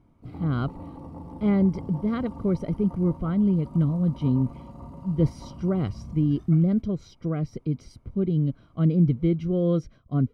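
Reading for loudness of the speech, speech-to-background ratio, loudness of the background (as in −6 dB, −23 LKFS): −25.5 LKFS, 16.5 dB, −42.0 LKFS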